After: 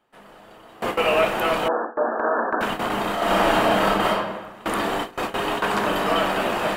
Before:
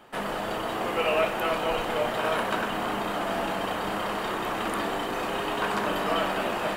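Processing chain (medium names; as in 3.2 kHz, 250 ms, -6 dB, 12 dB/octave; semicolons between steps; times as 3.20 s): 1.68–2.61 s: brick-wall FIR band-pass 210–1800 Hz; gate with hold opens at -19 dBFS; 3.13–4.33 s: reverb throw, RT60 1.1 s, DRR -5 dB; trim +5 dB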